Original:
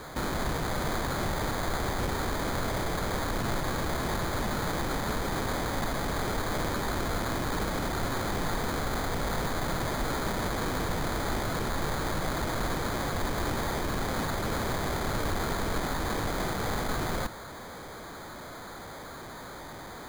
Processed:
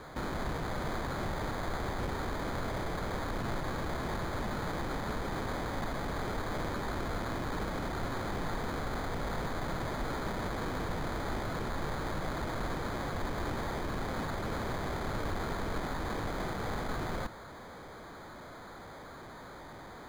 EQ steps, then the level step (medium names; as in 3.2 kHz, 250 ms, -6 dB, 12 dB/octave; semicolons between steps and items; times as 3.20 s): treble shelf 5.3 kHz -10.5 dB; -4.5 dB